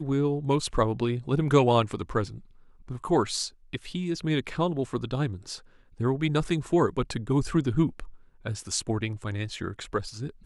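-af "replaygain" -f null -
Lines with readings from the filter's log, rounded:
track_gain = +6.8 dB
track_peak = 0.311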